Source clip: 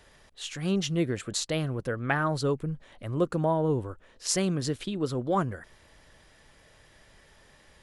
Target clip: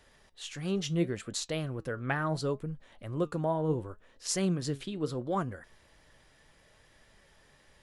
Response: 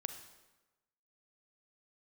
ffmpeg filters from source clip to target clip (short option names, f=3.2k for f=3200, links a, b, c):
-af "flanger=delay=3.5:depth=4.3:regen=81:speed=0.72:shape=triangular"